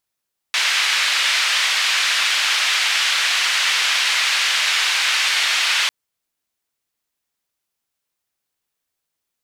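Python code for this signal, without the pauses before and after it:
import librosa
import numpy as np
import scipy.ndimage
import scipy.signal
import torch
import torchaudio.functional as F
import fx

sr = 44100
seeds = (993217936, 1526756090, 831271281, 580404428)

y = fx.band_noise(sr, seeds[0], length_s=5.35, low_hz=1900.0, high_hz=3100.0, level_db=-18.5)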